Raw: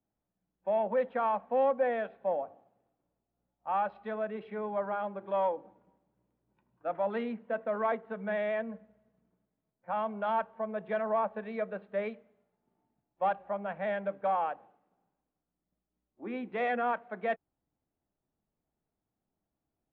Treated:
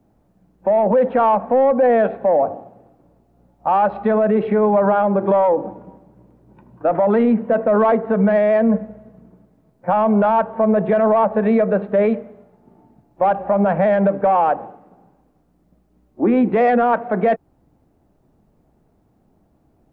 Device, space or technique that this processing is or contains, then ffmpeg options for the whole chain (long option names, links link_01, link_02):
mastering chain: -af "equalizer=frequency=3300:width_type=o:width=0.26:gain=-2,acompressor=threshold=-34dB:ratio=1.5,asoftclip=type=tanh:threshold=-25.5dB,tiltshelf=frequency=1500:gain=8,alimiter=level_in=28.5dB:limit=-1dB:release=50:level=0:latency=1,volume=-8dB"